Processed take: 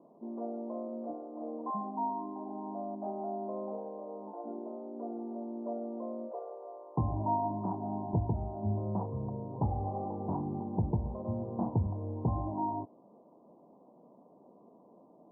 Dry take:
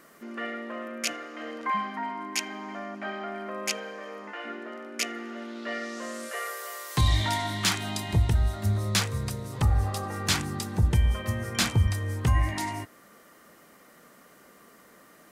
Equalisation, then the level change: HPF 89 Hz; rippled Chebyshev low-pass 1000 Hz, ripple 3 dB; low shelf 120 Hz -9 dB; +1.5 dB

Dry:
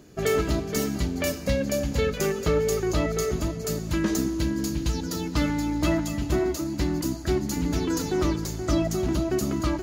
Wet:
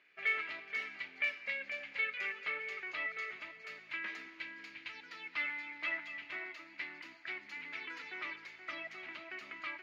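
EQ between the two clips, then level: band-pass 2200 Hz, Q 4.9; air absorption 360 m; tilt +3.5 dB/oct; +4.5 dB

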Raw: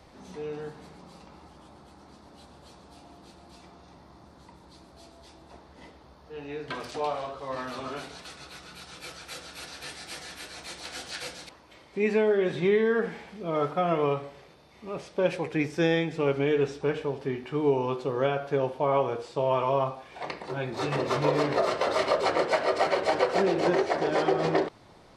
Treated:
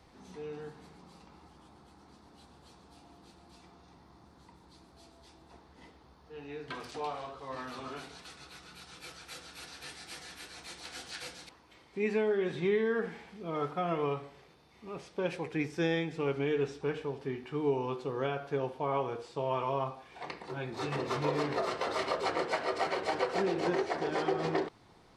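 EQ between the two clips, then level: bell 590 Hz -8.5 dB 0.21 oct; -5.5 dB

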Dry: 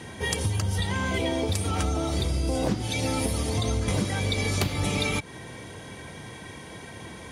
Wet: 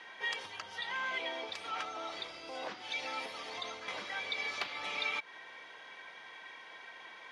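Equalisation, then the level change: HPF 1100 Hz 12 dB/oct; air absorption 240 m; -1.0 dB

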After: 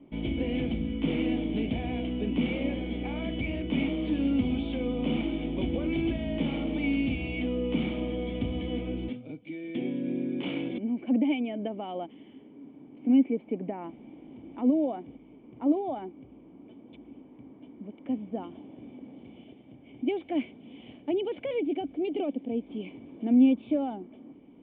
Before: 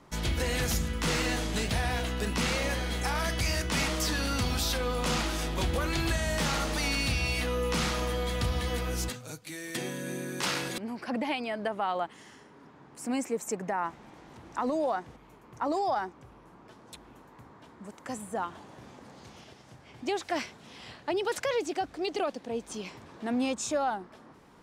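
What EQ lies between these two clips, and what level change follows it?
vocal tract filter i; bell 670 Hz +15 dB 1.8 oct; +7.0 dB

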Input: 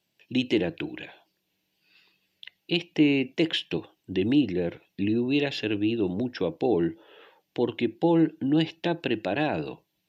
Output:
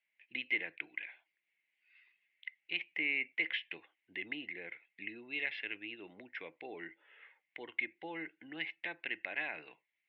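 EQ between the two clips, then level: band-pass 2100 Hz, Q 9.7; air absorption 270 m; +10.5 dB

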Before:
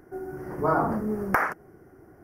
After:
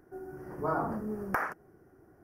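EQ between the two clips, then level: notch 2100 Hz, Q 14; -7.5 dB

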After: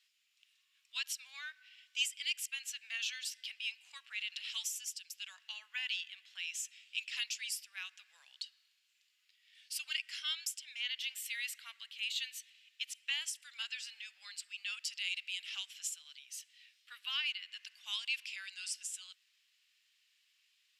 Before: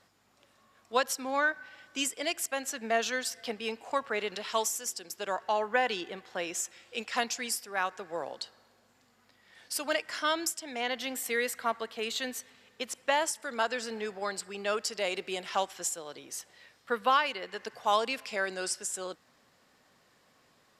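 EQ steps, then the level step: ladder high-pass 2400 Hz, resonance 55%; +2.5 dB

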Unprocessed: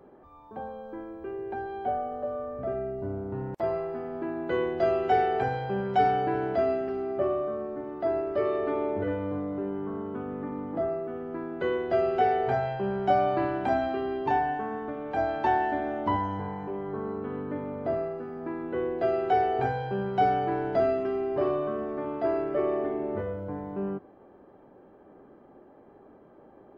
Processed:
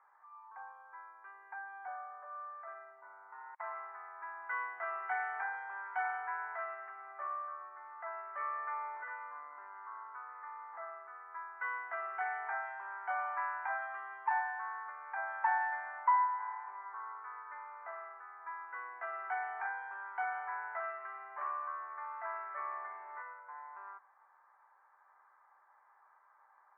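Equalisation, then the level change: elliptic band-pass 940–2100 Hz, stop band 80 dB; air absorption 260 m; +2.5 dB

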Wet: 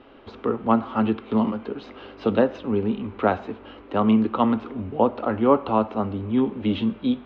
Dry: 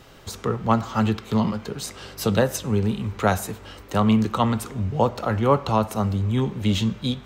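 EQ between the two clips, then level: inverse Chebyshev low-pass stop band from 8800 Hz, stop band 60 dB; resonant low shelf 200 Hz -7.5 dB, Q 3; bell 1900 Hz -5.5 dB 0.66 oct; 0.0 dB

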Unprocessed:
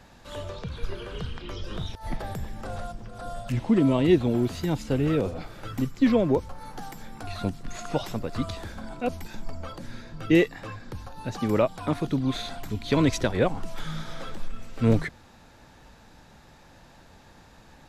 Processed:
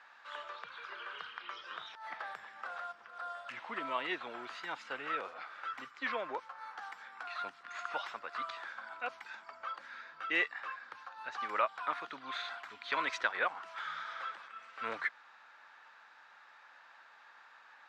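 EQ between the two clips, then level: ladder band-pass 1600 Hz, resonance 40%; +10.0 dB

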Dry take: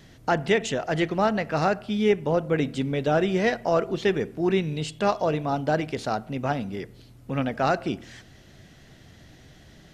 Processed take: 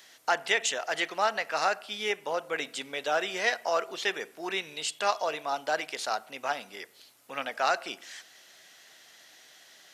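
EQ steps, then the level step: HPF 810 Hz 12 dB/oct; high shelf 4900 Hz +8.5 dB; 0.0 dB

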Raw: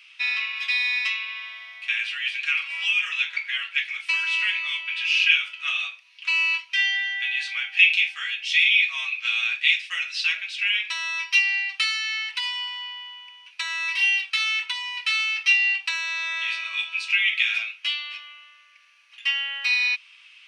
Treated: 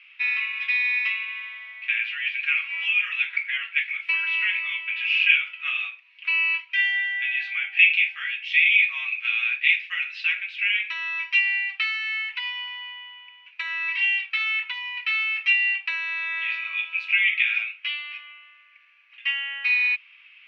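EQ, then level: synth low-pass 2300 Hz, resonance Q 2.3; -5.0 dB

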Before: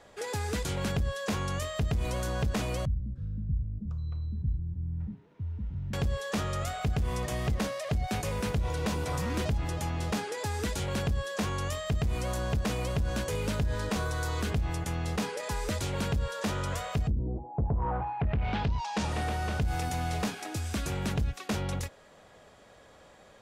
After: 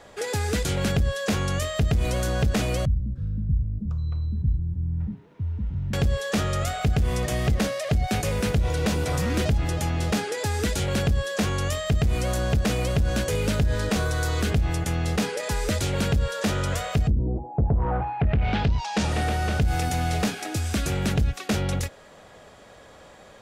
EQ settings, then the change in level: dynamic EQ 1000 Hz, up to -7 dB, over -54 dBFS, Q 3.6; +7.0 dB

